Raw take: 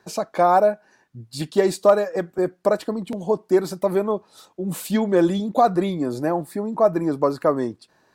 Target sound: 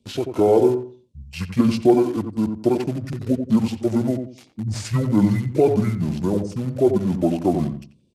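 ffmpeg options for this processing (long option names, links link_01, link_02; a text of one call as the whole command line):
ffmpeg -i in.wav -filter_complex "[0:a]acrossover=split=100|670|5500[link_01][link_02][link_03][link_04];[link_03]acrusher=bits=6:mix=0:aa=0.000001[link_05];[link_01][link_02][link_05][link_04]amix=inputs=4:normalize=0,asetrate=26222,aresample=44100,atempo=1.68179,asplit=2[link_06][link_07];[link_07]adelay=88,lowpass=frequency=1100:poles=1,volume=-6dB,asplit=2[link_08][link_09];[link_09]adelay=88,lowpass=frequency=1100:poles=1,volume=0.28,asplit=2[link_10][link_11];[link_11]adelay=88,lowpass=frequency=1100:poles=1,volume=0.28,asplit=2[link_12][link_13];[link_13]adelay=88,lowpass=frequency=1100:poles=1,volume=0.28[link_14];[link_06][link_08][link_10][link_12][link_14]amix=inputs=5:normalize=0" out.wav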